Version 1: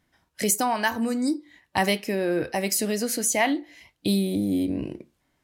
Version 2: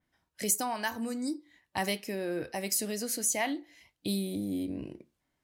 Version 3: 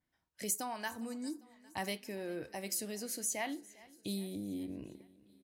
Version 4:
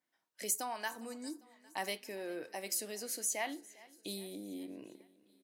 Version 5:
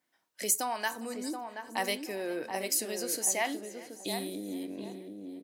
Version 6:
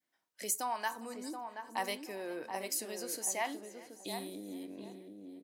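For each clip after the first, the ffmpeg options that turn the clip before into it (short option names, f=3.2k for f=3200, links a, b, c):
-af "adynamicequalizer=threshold=0.0126:dfrequency=3900:dqfactor=0.7:tfrequency=3900:tqfactor=0.7:attack=5:release=100:ratio=0.375:range=2.5:mode=boostabove:tftype=highshelf,volume=-9dB"
-af "aecho=1:1:403|806|1209|1612:0.0794|0.0461|0.0267|0.0155,volume=-7dB"
-af "highpass=330,volume=1dB"
-filter_complex "[0:a]asplit=2[a][b];[b]adelay=728,lowpass=f=950:p=1,volume=-5dB,asplit=2[c][d];[d]adelay=728,lowpass=f=950:p=1,volume=0.3,asplit=2[e][f];[f]adelay=728,lowpass=f=950:p=1,volume=0.3,asplit=2[g][h];[h]adelay=728,lowpass=f=950:p=1,volume=0.3[i];[a][c][e][g][i]amix=inputs=5:normalize=0,volume=6.5dB"
-af "adynamicequalizer=threshold=0.00398:dfrequency=1000:dqfactor=2:tfrequency=1000:tqfactor=2:attack=5:release=100:ratio=0.375:range=3.5:mode=boostabove:tftype=bell,volume=-6.5dB"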